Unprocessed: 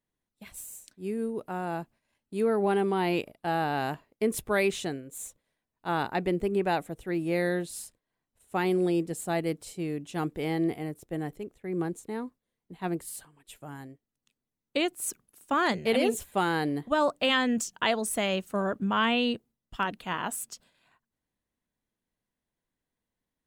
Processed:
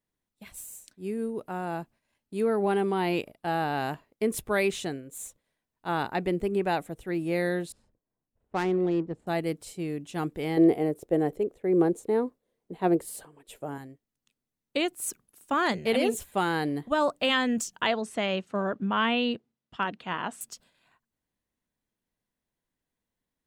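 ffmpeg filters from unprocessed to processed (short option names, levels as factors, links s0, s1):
-filter_complex "[0:a]asettb=1/sr,asplit=3[s0][s1][s2];[s0]atrim=end=7.724[s3];[s1]atrim=start=7.72:end=9.27,asetpts=PTS-STARTPTS,afade=t=in:d=0.004:c=qsin,afade=t=out:st=1.546:d=0.004:c=qsin,adynamicsmooth=sensitivity=3:basefreq=880[s4];[s2]atrim=start=9.266[s5];[s3][s4]acrossfade=d=0.004:c1=hsin:c2=qsin[s6];[s6][s5]acrossfade=d=0.004:c1=qsin:c2=hsin,asettb=1/sr,asplit=3[s7][s8][s9];[s7]atrim=end=10.574[s10];[s8]atrim=start=10.57:end=13.78,asetpts=PTS-STARTPTS,afade=t=in:d=0.004:c=qsin,afade=t=out:st=3.206:d=0.004:c=qsin,equalizer=f=480:t=o:w=1.5:g=13[s11];[s9]atrim=start=13.776[s12];[s10][s11]acrossfade=d=0.004:c1=hsin:c2=qsin[s13];[s13][s12]acrossfade=d=0.004:c1=qsin:c2=hsin,asettb=1/sr,asplit=3[s14][s15][s16];[s14]atrim=end=17.874[s17];[s15]atrim=start=17.87:end=20.41,asetpts=PTS-STARTPTS,afade=t=in:d=0.004:c=qsin,afade=t=out:st=2.536:d=0.004:c=qsin,highpass=110,lowpass=4600[s18];[s16]atrim=start=20.406[s19];[s17][s18]acrossfade=d=0.004:c1=hsin:c2=qsin[s20];[s20][s19]acrossfade=d=0.004:c1=qsin:c2=hsin"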